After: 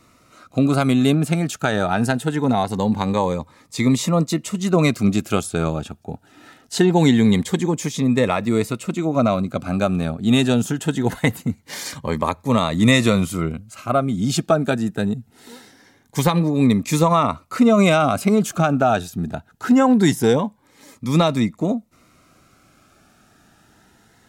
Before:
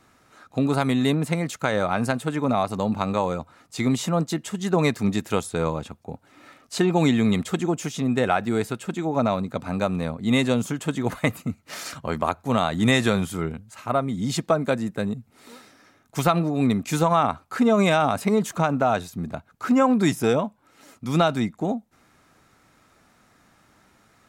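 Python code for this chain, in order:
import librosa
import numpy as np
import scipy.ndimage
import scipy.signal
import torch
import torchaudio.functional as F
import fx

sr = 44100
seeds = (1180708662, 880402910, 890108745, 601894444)

y = fx.notch_cascade(x, sr, direction='rising', hz=0.23)
y = F.gain(torch.from_numpy(y), 5.5).numpy()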